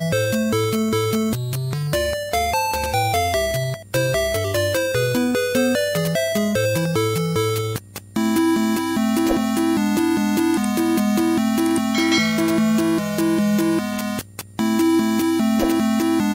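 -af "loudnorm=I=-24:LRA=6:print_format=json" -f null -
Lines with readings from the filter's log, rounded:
"input_i" : "-19.9",
"input_tp" : "-5.7",
"input_lra" : "1.9",
"input_thresh" : "-30.0",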